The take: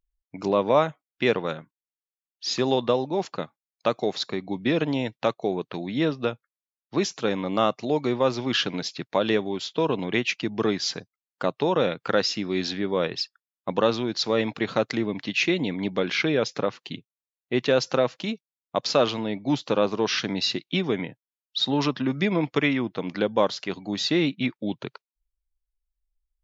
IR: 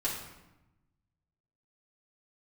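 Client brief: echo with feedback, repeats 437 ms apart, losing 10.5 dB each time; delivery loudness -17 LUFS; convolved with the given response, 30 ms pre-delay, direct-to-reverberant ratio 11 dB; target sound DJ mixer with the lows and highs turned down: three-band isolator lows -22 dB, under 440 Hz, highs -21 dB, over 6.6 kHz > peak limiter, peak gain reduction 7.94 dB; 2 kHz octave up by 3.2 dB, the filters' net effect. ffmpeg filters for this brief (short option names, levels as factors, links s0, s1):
-filter_complex "[0:a]equalizer=f=2000:t=o:g=4,aecho=1:1:437|874|1311:0.299|0.0896|0.0269,asplit=2[s0][s1];[1:a]atrim=start_sample=2205,adelay=30[s2];[s1][s2]afir=irnorm=-1:irlink=0,volume=0.15[s3];[s0][s3]amix=inputs=2:normalize=0,acrossover=split=440 6600:gain=0.0794 1 0.0891[s4][s5][s6];[s4][s5][s6]amix=inputs=3:normalize=0,volume=4.22,alimiter=limit=0.668:level=0:latency=1"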